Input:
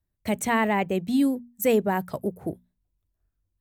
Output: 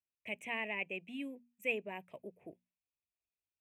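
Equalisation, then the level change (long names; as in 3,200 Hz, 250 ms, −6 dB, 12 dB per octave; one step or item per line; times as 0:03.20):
pair of resonant band-passes 1,400 Hz, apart 1.7 octaves
phaser with its sweep stopped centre 1,900 Hz, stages 4
+4.0 dB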